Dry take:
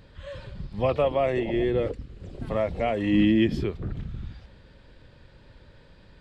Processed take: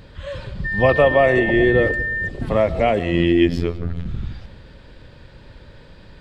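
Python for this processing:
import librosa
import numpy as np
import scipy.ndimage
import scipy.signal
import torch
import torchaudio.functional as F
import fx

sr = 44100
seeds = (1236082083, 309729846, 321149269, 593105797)

y = fx.dmg_tone(x, sr, hz=1800.0, level_db=-30.0, at=(0.64, 2.27), fade=0.02)
y = fx.robotise(y, sr, hz=85.4, at=(2.99, 4.06))
y = fx.rev_freeverb(y, sr, rt60_s=1.2, hf_ratio=0.55, predelay_ms=70, drr_db=17.5)
y = y * 10.0 ** (8.5 / 20.0)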